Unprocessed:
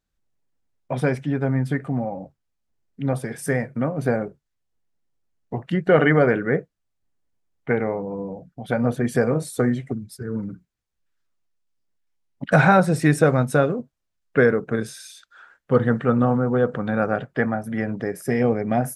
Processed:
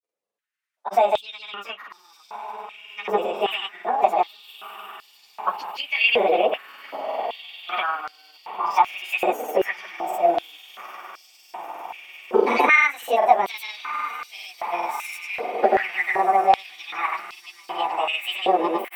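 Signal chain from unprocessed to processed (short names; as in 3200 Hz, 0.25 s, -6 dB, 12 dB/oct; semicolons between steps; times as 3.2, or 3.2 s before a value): pitch shift by moving bins +7.5 st; recorder AGC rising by 13 dB/s; on a send: diffused feedback echo 1.284 s, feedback 70%, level -10.5 dB; on the sum: grains, pitch spread up and down by 0 st; stepped high-pass 2.6 Hz 490–4800 Hz; gain -1.5 dB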